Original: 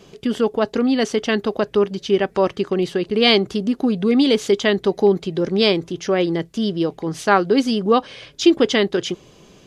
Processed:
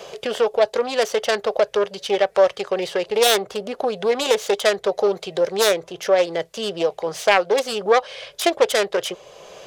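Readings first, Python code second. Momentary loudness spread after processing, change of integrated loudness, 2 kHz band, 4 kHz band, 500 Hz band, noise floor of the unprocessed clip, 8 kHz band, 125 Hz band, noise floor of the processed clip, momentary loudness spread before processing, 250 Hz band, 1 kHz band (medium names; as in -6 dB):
8 LU, -1.5 dB, +0.5 dB, -2.0 dB, +0.5 dB, -50 dBFS, +6.0 dB, -14.0 dB, -51 dBFS, 7 LU, -13.5 dB, +0.5 dB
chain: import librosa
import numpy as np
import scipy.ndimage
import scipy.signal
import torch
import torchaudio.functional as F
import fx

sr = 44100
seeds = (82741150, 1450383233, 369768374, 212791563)

y = fx.self_delay(x, sr, depth_ms=0.25)
y = fx.low_shelf_res(y, sr, hz=390.0, db=-12.0, q=3.0)
y = fx.band_squash(y, sr, depth_pct=40)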